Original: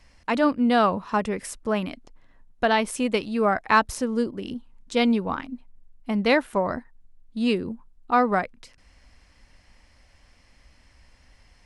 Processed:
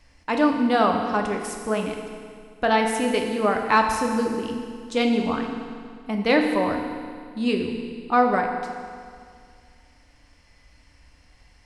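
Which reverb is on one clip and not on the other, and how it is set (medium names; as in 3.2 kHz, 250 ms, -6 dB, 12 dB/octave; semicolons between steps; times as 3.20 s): FDN reverb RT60 2.1 s, low-frequency decay 1.05×, high-frequency decay 0.95×, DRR 2 dB; trim -1 dB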